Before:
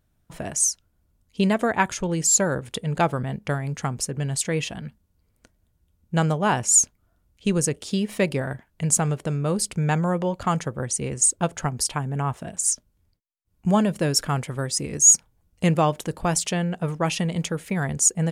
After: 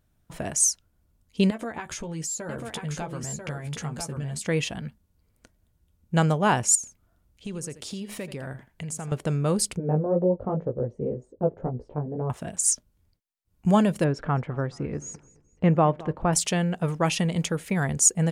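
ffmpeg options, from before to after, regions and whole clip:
-filter_complex "[0:a]asettb=1/sr,asplit=3[s0][s1][s2];[s0]atrim=end=1.504[s3];[s1]atrim=start=1.5:end=4.47,asetpts=PTS-STARTPTS,afade=t=in:d=0.004:c=qsin,afade=t=out:st=2.966:d=0.004:c=qsin,acompressor=threshold=0.0282:ratio=8:attack=3.2:release=140:knee=1:detection=peak,asplit=2[s4][s5];[s5]adelay=13,volume=0.501[s6];[s4][s6]amix=inputs=2:normalize=0,atrim=end_sample=130977,aecho=1:1:991:0.562,atrim=end_sample=130977[s7];[s2]atrim=start=4.466[s8];[s3][s7]acrossfade=d=0.004:c1=hsin:c2=qsin[s9];[s9][s8]acrossfade=d=0.004:c1=qsin:c2=hsin,asettb=1/sr,asplit=3[s10][s11][s12];[s10]atrim=end=6.754[s13];[s11]atrim=start=6.75:end=9.12,asetpts=PTS-STARTPTS,afade=t=in:d=0.004:c=qsin,afade=t=out:st=2.366:d=0.004:c=qsin,acompressor=threshold=0.0224:ratio=4:attack=3.2:release=140:knee=1:detection=peak,aecho=1:1:83:0.2,atrim=end_sample=104517[s14];[s12]atrim=start=9.116[s15];[s13][s14]acrossfade=d=0.004:c1=hsin:c2=qsin[s16];[s16][s15]acrossfade=d=0.004:c1=qsin:c2=hsin,asettb=1/sr,asplit=3[s17][s18][s19];[s17]atrim=end=9.774[s20];[s18]atrim=start=9.77:end=12.3,asetpts=PTS-STARTPTS,afade=t=in:d=0.004:c=qsin,afade=t=out:st=2.526:d=0.004:c=qsin,lowpass=f=500:t=q:w=2.5,flanger=delay=16:depth=4.2:speed=2[s21];[s19]atrim=start=12.296[s22];[s20][s21]acrossfade=d=0.004:c1=hsin:c2=qsin[s23];[s23][s22]acrossfade=d=0.004:c1=qsin:c2=hsin,asettb=1/sr,asplit=3[s24][s25][s26];[s24]atrim=end=14.044[s27];[s25]atrim=start=14.04:end=16.33,asetpts=PTS-STARTPTS,afade=t=in:d=0.004:c=qsin,afade=t=out:st=2.286:d=0.004:c=qsin,lowpass=1600,aecho=1:1:213|426|639:0.0891|0.0303|0.0103,atrim=end_sample=100989[s28];[s26]atrim=start=16.326[s29];[s27][s28]acrossfade=d=0.004:c1=hsin:c2=qsin[s30];[s30][s29]acrossfade=d=0.004:c1=qsin:c2=hsin"

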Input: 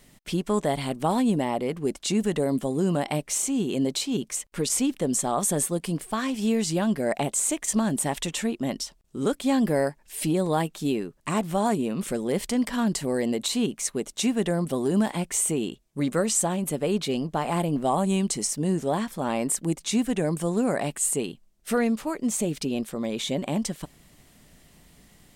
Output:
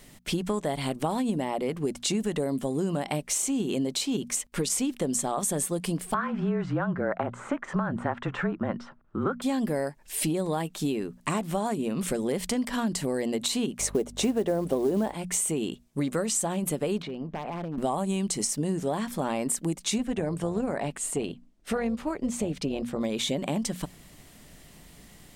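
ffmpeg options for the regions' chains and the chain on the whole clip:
-filter_complex "[0:a]asettb=1/sr,asplit=3[s0][s1][s2];[s0]atrim=end=6.144[s3];[s1]atrim=start=6.14:end=9.42,asetpts=PTS-STARTPTS,afade=t=in:d=0.004:c=qsin,afade=t=out:st=3.276:d=0.004:c=qsin,lowpass=f=1400:t=q:w=4,afreqshift=-30[s4];[s2]atrim=start=9.416[s5];[s3][s4]acrossfade=d=0.004:c1=hsin:c2=qsin[s6];[s6][s5]acrossfade=d=0.004:c1=qsin:c2=hsin,asettb=1/sr,asplit=3[s7][s8][s9];[s7]atrim=end=13.794[s10];[s8]atrim=start=13.79:end=15.14,asetpts=PTS-STARTPTS,afade=t=in:d=0.004:c=qsin,afade=t=out:st=1.346:d=0.004:c=qsin,equalizer=f=490:w=0.5:g=14,acrusher=bits=7:mode=log:mix=0:aa=0.000001,aeval=exprs='val(0)+0.00891*(sin(2*PI*50*n/s)+sin(2*PI*2*50*n/s)/2+sin(2*PI*3*50*n/s)/3+sin(2*PI*4*50*n/s)/4+sin(2*PI*5*50*n/s)/5)':c=same[s11];[s9]atrim=start=15.136[s12];[s10][s11]acrossfade=d=0.004:c1=hsin:c2=qsin[s13];[s13][s12]acrossfade=d=0.004:c1=qsin:c2=hsin,asettb=1/sr,asplit=3[s14][s15][s16];[s14]atrim=end=17.024[s17];[s15]atrim=start=17.02:end=17.78,asetpts=PTS-STARTPTS,afade=t=in:d=0.004:c=qsin,afade=t=out:st=0.756:d=0.004:c=qsin,lowpass=2200,aeval=exprs='0.119*(abs(mod(val(0)/0.119+3,4)-2)-1)':c=same,acompressor=threshold=0.02:ratio=10:attack=3.2:release=140:knee=1:detection=peak[s18];[s16]atrim=start=17.776[s19];[s17][s18]acrossfade=d=0.004:c1=hsin:c2=qsin[s20];[s20][s19]acrossfade=d=0.004:c1=qsin:c2=hsin,asettb=1/sr,asplit=3[s21][s22][s23];[s21]atrim=end=19.984[s24];[s22]atrim=start=19.98:end=23.01,asetpts=PTS-STARTPTS,afade=t=in:d=0.004:c=qsin,afade=t=out:st=3.026:d=0.004:c=qsin,aemphasis=mode=reproduction:type=50kf,tremolo=f=280:d=0.4[s25];[s23]atrim=start=23.006[s26];[s24][s25]acrossfade=d=0.004:c1=hsin:c2=qsin[s27];[s27][s26]acrossfade=d=0.004:c1=qsin:c2=hsin,bandreject=f=60:t=h:w=6,bandreject=f=120:t=h:w=6,bandreject=f=180:t=h:w=6,bandreject=f=240:t=h:w=6,acompressor=threshold=0.0355:ratio=5,volume=1.58"

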